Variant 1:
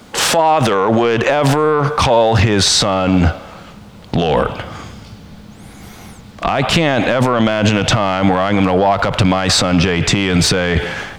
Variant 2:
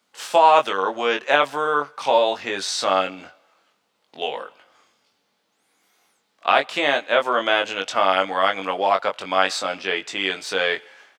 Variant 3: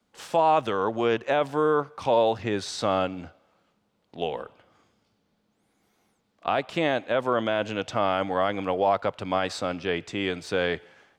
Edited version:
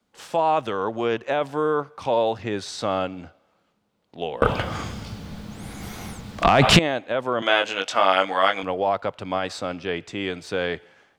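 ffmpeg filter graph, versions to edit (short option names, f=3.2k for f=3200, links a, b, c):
-filter_complex "[2:a]asplit=3[a][b][c];[a]atrim=end=4.422[d];[0:a]atrim=start=4.418:end=6.792[e];[b]atrim=start=6.788:end=7.422[f];[1:a]atrim=start=7.418:end=8.632[g];[c]atrim=start=8.628[h];[d][e]acrossfade=d=0.004:c1=hsin:c2=hsin[i];[i][f]acrossfade=d=0.004:c1=hsin:c2=hsin[j];[j][g]acrossfade=d=0.004:c1=hsin:c2=hsin[k];[k][h]acrossfade=d=0.004:c1=hsin:c2=hsin"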